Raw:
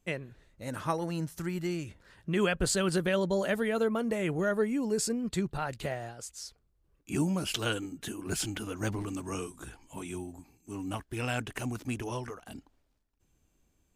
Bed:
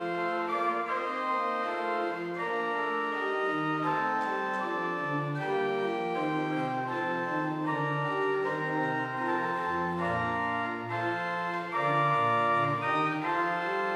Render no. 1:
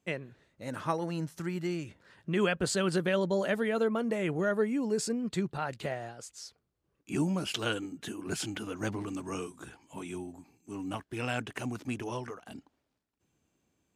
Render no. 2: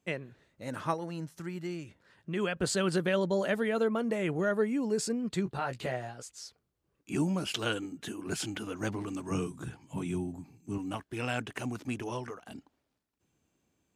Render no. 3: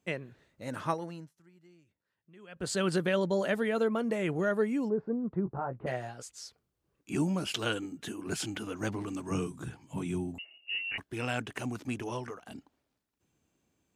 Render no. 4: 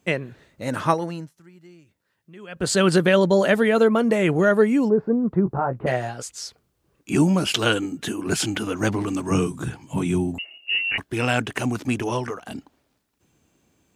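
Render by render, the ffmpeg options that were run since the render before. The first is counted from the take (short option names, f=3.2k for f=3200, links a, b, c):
-af "highpass=120,highshelf=f=9.7k:g=-11.5"
-filter_complex "[0:a]asettb=1/sr,asplit=3[a][b][c];[a]atrim=end=5.454[d];[b]atrim=start=5.45:end=6.23,asetpts=PTS-STARTPTS,afade=t=in:d=0.004:c=qsin,afade=t=out:st=0.776:d=0.004:c=qsin,asplit=2[e][f];[f]adelay=16,volume=-5.5dB[g];[e][g]amix=inputs=2:normalize=0,atrim=end_sample=34398[h];[c]atrim=start=6.226[i];[d][h]acrossfade=d=0.004:c1=hsin:c2=qsin[j];[j][i]acrossfade=d=0.004:c1=qsin:c2=hsin,asettb=1/sr,asplit=3[k][l][m];[k]atrim=end=9.314[n];[l]atrim=start=9.31:end=10.78,asetpts=PTS-STARTPTS,afade=t=in:d=0.004:c=qsin,afade=t=out:st=1.466:d=0.004:c=qsin,equalizer=f=130:w=0.88:g=14.5[o];[m]atrim=start=10.776[p];[n][o]acrossfade=d=0.004:c1=hsin:c2=qsin[q];[q][p]acrossfade=d=0.004:c1=qsin:c2=hsin,asplit=3[r][s][t];[r]atrim=end=0.942[u];[s]atrim=start=0.938:end=2.562,asetpts=PTS-STARTPTS,volume=-4dB[v];[t]atrim=start=2.558[w];[u][v]acrossfade=d=0.004:c1=hsin:c2=hsin[x];[x][w]acrossfade=d=0.004:c1=hsin:c2=hsin"
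-filter_complex "[0:a]asplit=3[a][b][c];[a]afade=t=out:st=4.88:d=0.02[d];[b]lowpass=f=1.2k:w=0.5412,lowpass=f=1.2k:w=1.3066,afade=t=in:st=4.88:d=0.02,afade=t=out:st=5.86:d=0.02[e];[c]afade=t=in:st=5.86:d=0.02[f];[d][e][f]amix=inputs=3:normalize=0,asettb=1/sr,asplit=3[g][h][i];[g]atrim=end=10.384[j];[h]atrim=start=10.38:end=10.98,asetpts=PTS-STARTPTS,afade=t=in:d=0.004:c=qsin,afade=t=out:st=0.596:d=0.004:c=qsin,lowpass=f=2.6k:t=q:w=0.5098,lowpass=f=2.6k:t=q:w=0.6013,lowpass=f=2.6k:t=q:w=0.9,lowpass=f=2.6k:t=q:w=2.563,afreqshift=-3000[k];[i]atrim=start=10.976[l];[j][k]acrossfade=d=0.004:c1=hsin:c2=qsin[m];[m][l]acrossfade=d=0.004:c1=qsin:c2=hsin,asplit=3[n][o][p];[n]atrim=end=1.34,asetpts=PTS-STARTPTS,afade=t=out:st=0.99:d=0.35:silence=0.0794328[q];[o]atrim=start=1.34:end=2.47,asetpts=PTS-STARTPTS,volume=-22dB[r];[p]atrim=start=2.47,asetpts=PTS-STARTPTS,afade=t=in:d=0.35:silence=0.0794328[s];[q][r][s]concat=n=3:v=0:a=1"
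-af "volume=11.5dB"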